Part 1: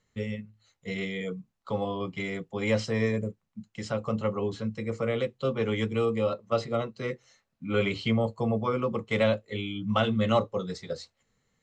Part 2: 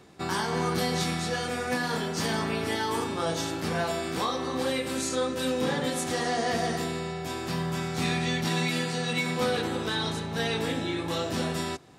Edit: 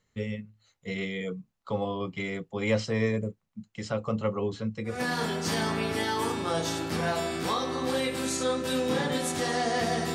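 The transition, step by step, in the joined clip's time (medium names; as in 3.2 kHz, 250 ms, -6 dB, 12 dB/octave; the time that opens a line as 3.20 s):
part 1
4.96 s: go over to part 2 from 1.68 s, crossfade 0.24 s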